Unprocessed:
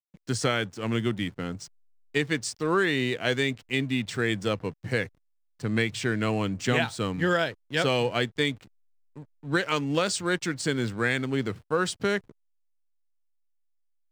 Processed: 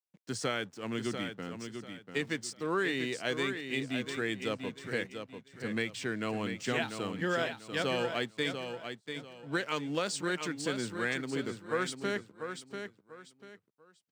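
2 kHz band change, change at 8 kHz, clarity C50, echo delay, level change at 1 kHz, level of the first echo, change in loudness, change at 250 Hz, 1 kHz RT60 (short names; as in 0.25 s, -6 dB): -6.0 dB, -6.0 dB, none, 0.692 s, -6.0 dB, -7.5 dB, -7.5 dB, -7.0 dB, none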